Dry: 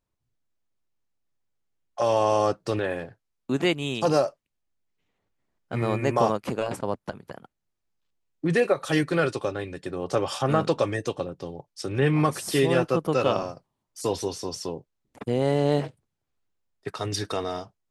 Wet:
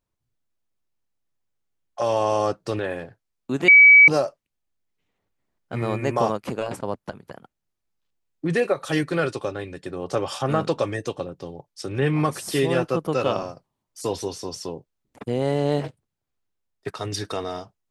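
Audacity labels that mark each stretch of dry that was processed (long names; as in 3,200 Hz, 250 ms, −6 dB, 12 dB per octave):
3.680000	4.080000	beep over 2,280 Hz −7 dBFS
15.840000	16.910000	leveller curve on the samples passes 1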